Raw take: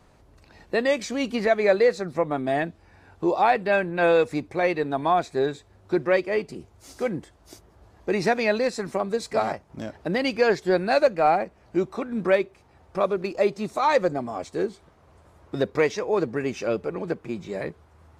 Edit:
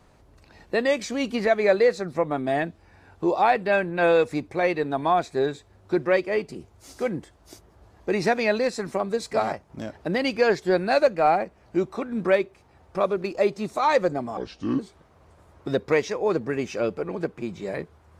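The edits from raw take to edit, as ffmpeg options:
ffmpeg -i in.wav -filter_complex "[0:a]asplit=3[link_01][link_02][link_03];[link_01]atrim=end=14.374[link_04];[link_02]atrim=start=14.37:end=14.66,asetpts=PTS-STARTPTS,asetrate=30429,aresample=44100[link_05];[link_03]atrim=start=14.656[link_06];[link_04][link_05]acrossfade=duration=0.004:curve1=hsin:curve2=hsin[link_07];[link_07][link_06]acrossfade=duration=0.004:curve1=hsin:curve2=hsin" out.wav

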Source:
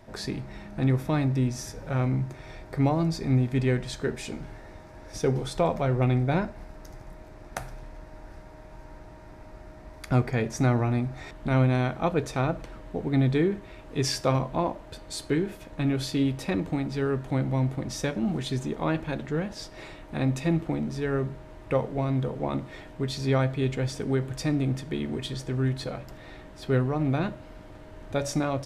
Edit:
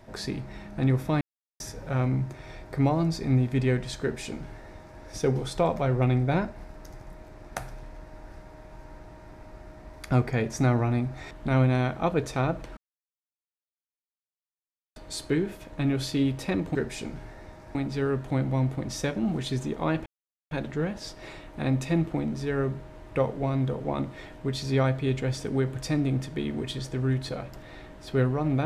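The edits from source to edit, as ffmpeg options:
ffmpeg -i in.wav -filter_complex "[0:a]asplit=8[link_01][link_02][link_03][link_04][link_05][link_06][link_07][link_08];[link_01]atrim=end=1.21,asetpts=PTS-STARTPTS,afade=type=out:start_time=1.206:duration=0.004:curve=hsin[link_09];[link_02]atrim=start=1.21:end=1.6,asetpts=PTS-STARTPTS,volume=0[link_10];[link_03]atrim=start=1.6:end=12.77,asetpts=PTS-STARTPTS,afade=type=in:duration=0.004:curve=hsin,afade=type=out:start_time=11.166:duration=0.004:curve=hsin[link_11];[link_04]atrim=start=12.77:end=14.96,asetpts=PTS-STARTPTS,volume=0[link_12];[link_05]atrim=start=14.96:end=16.752,asetpts=PTS-STARTPTS,afade=type=in:duration=0.004:curve=hsin[link_13];[link_06]atrim=start=4.018:end=5.022[link_14];[link_07]atrim=start=16.748:end=19.06,asetpts=PTS-STARTPTS,afade=type=out:start_time=2.308:duration=0.004:curve=hsin,apad=pad_dur=0.45[link_15];[link_08]atrim=start=19.06,asetpts=PTS-STARTPTS,afade=type=in:duration=0.004:curve=hsin[link_16];[link_09][link_10][link_11][link_12][link_13]concat=n=5:v=0:a=1[link_17];[link_17][link_14]acrossfade=duration=0.004:curve1=hsin:curve2=hsin[link_18];[link_15][link_16]concat=n=2:v=0:a=1[link_19];[link_18][link_19]acrossfade=duration=0.004:curve1=hsin:curve2=hsin" out.wav

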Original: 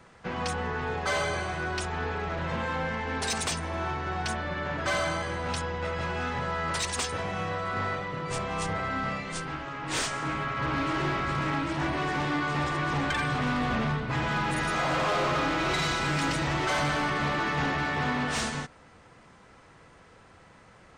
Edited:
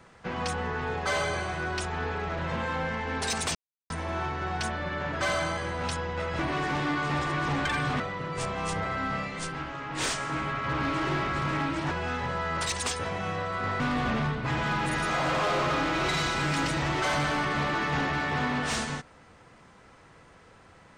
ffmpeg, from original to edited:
ffmpeg -i in.wav -filter_complex "[0:a]asplit=6[link_01][link_02][link_03][link_04][link_05][link_06];[link_01]atrim=end=3.55,asetpts=PTS-STARTPTS,afade=type=out:start_time=3.546:duration=0.004:curve=hsin,apad=pad_dur=0.35[link_07];[link_02]atrim=start=3.55:end=6.042,asetpts=PTS-STARTPTS,afade=type=in:duration=0.004:curve=hsin[link_08];[link_03]atrim=start=11.838:end=13.452[link_09];[link_04]atrim=start=7.928:end=11.842[link_10];[link_05]atrim=start=6.038:end=7.932[link_11];[link_06]atrim=start=13.448[link_12];[link_07][link_08]concat=n=2:v=0:a=1[link_13];[link_13][link_09]acrossfade=duration=0.004:curve1=hsin:curve2=hsin[link_14];[link_14][link_10]acrossfade=duration=0.004:curve1=hsin:curve2=hsin[link_15];[link_15][link_11]acrossfade=duration=0.004:curve1=hsin:curve2=hsin[link_16];[link_16][link_12]acrossfade=duration=0.004:curve1=hsin:curve2=hsin" out.wav

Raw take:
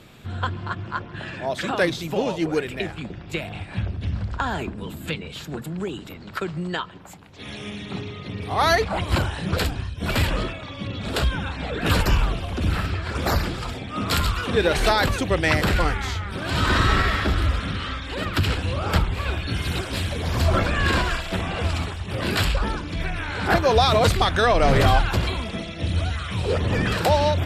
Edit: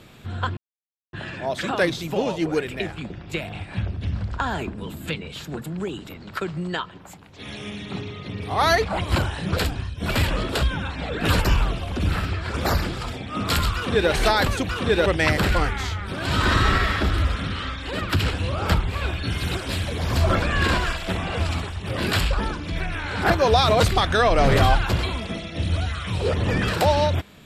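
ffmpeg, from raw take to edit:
ffmpeg -i in.wav -filter_complex "[0:a]asplit=6[link_01][link_02][link_03][link_04][link_05][link_06];[link_01]atrim=end=0.57,asetpts=PTS-STARTPTS,afade=type=out:start_time=0.566:duration=0.004:curve=hsin[link_07];[link_02]atrim=start=0.57:end=1.13,asetpts=PTS-STARTPTS,volume=0[link_08];[link_03]atrim=start=1.13:end=10.492,asetpts=PTS-STARTPTS,afade=type=in:duration=0.004:curve=hsin[link_09];[link_04]atrim=start=11.098:end=15.302[link_10];[link_05]atrim=start=14.358:end=14.732[link_11];[link_06]atrim=start=15.298[link_12];[link_07][link_08][link_09]concat=n=3:v=0:a=1[link_13];[link_13][link_10]acrossfade=duration=0.004:curve1=hsin:curve2=hsin[link_14];[link_14][link_11]acrossfade=duration=0.004:curve1=hsin:curve2=hsin[link_15];[link_15][link_12]acrossfade=duration=0.004:curve1=hsin:curve2=hsin" out.wav

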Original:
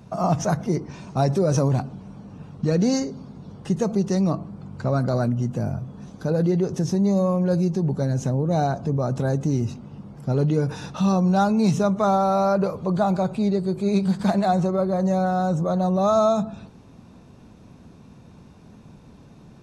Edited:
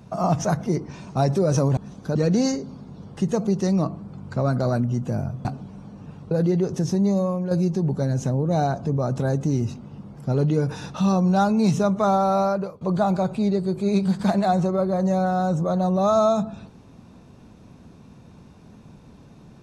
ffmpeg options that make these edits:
ffmpeg -i in.wav -filter_complex "[0:a]asplit=7[link_01][link_02][link_03][link_04][link_05][link_06][link_07];[link_01]atrim=end=1.772[link_08];[link_02]atrim=start=5.928:end=6.312[link_09];[link_03]atrim=start=2.628:end=5.932[link_10];[link_04]atrim=start=1.768:end=2.632[link_11];[link_05]atrim=start=6.308:end=7.51,asetpts=PTS-STARTPTS,afade=type=out:start_time=0.742:duration=0.46:silence=0.473151[link_12];[link_06]atrim=start=7.51:end=12.81,asetpts=PTS-STARTPTS,afade=type=in:duration=0.004:curve=hsin:silence=0.473151,afade=type=out:start_time=4.89:duration=0.41:silence=0.0891251[link_13];[link_07]atrim=start=12.81,asetpts=PTS-STARTPTS,afade=type=in:duration=0.004:curve=hsin:silence=0.0891251[link_14];[link_08][link_09]acrossfade=duration=0.004:curve1=hsin:curve2=hsin[link_15];[link_15][link_10]acrossfade=duration=0.004:curve1=hsin:curve2=hsin[link_16];[link_16][link_11]acrossfade=duration=0.004:curve1=hsin:curve2=hsin[link_17];[link_12][link_13][link_14]concat=n=3:v=0:a=1[link_18];[link_17][link_18]acrossfade=duration=0.004:curve1=hsin:curve2=hsin" out.wav

